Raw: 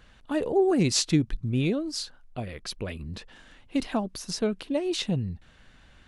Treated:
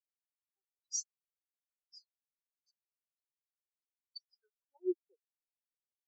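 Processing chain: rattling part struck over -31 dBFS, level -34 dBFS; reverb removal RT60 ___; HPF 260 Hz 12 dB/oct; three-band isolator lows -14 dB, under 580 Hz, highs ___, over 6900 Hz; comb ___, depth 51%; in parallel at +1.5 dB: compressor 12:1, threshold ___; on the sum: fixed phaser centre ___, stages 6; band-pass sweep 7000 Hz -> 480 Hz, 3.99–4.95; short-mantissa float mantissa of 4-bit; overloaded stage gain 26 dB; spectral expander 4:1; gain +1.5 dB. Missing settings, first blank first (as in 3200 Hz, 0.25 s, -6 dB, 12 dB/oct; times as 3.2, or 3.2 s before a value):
0.63 s, -13 dB, 5.1 ms, -39 dBFS, 600 Hz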